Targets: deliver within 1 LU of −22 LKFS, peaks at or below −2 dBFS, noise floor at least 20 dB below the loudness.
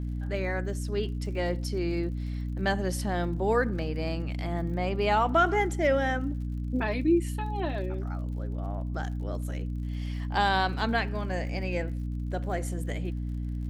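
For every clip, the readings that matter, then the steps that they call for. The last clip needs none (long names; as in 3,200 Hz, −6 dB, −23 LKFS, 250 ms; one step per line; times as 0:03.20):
crackle rate 54 per second; mains hum 60 Hz; hum harmonics up to 300 Hz; level of the hum −30 dBFS; integrated loudness −29.5 LKFS; sample peak −12.0 dBFS; target loudness −22.0 LKFS
→ click removal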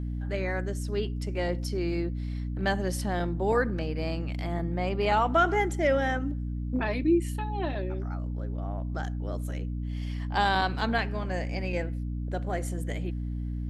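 crackle rate 0 per second; mains hum 60 Hz; hum harmonics up to 300 Hz; level of the hum −30 dBFS
→ hum removal 60 Hz, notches 5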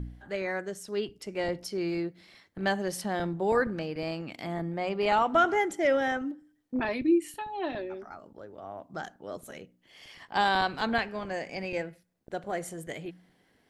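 mains hum none found; integrated loudness −30.5 LKFS; sample peak −13.0 dBFS; target loudness −22.0 LKFS
→ level +8.5 dB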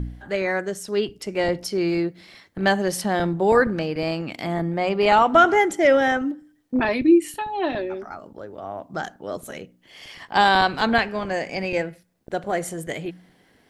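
integrated loudness −22.0 LKFS; sample peak −4.5 dBFS; background noise floor −59 dBFS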